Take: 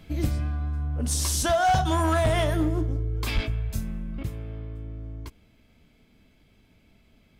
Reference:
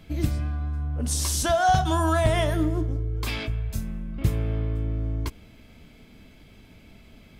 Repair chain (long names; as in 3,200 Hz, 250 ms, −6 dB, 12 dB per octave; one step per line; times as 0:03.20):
clipped peaks rebuilt −17 dBFS
high-pass at the plosives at 0:03.34
level 0 dB, from 0:04.23 +9.5 dB